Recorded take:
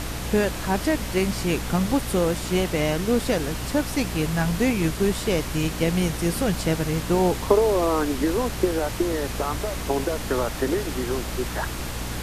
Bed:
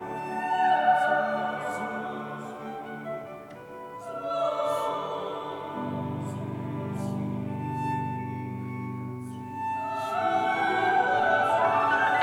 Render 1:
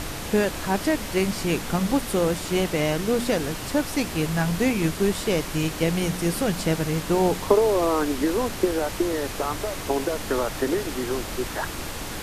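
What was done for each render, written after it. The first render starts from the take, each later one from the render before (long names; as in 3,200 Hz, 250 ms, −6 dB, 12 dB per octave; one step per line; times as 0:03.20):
hum removal 60 Hz, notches 4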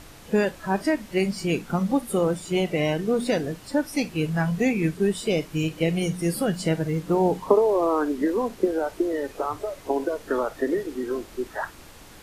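noise reduction from a noise print 14 dB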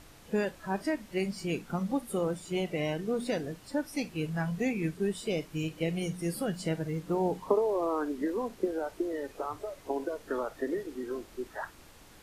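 level −8 dB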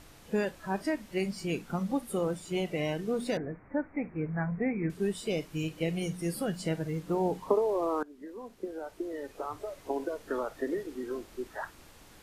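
0:03.37–0:04.90: Butterworth low-pass 2,300 Hz 96 dB per octave
0:08.03–0:09.73: fade in, from −20 dB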